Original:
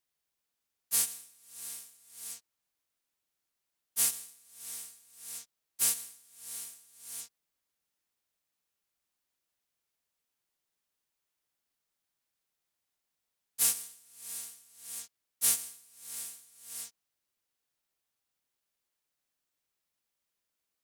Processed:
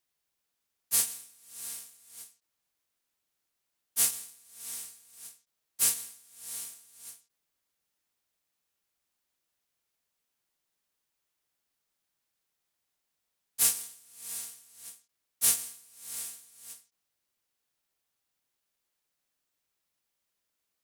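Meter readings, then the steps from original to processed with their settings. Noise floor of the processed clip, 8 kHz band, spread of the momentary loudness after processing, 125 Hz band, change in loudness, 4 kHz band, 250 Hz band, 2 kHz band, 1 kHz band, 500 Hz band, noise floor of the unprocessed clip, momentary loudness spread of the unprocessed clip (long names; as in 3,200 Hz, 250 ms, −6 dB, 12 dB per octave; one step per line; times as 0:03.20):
−83 dBFS, +2.0 dB, 22 LU, can't be measured, +3.5 dB, +2.0 dB, +2.0 dB, +2.0 dB, +2.0 dB, +2.5 dB, below −85 dBFS, 21 LU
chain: floating-point word with a short mantissa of 2 bits
every ending faded ahead of time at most 190 dB per second
level +2.5 dB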